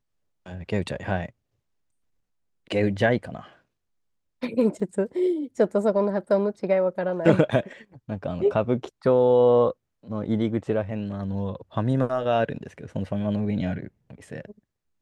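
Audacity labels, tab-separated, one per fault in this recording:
4.800000	4.800000	gap 2.1 ms

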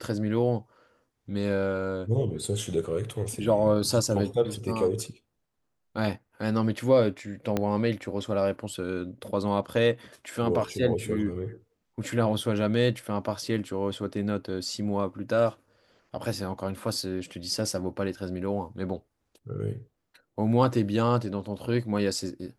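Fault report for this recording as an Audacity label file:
7.570000	7.570000	pop -13 dBFS

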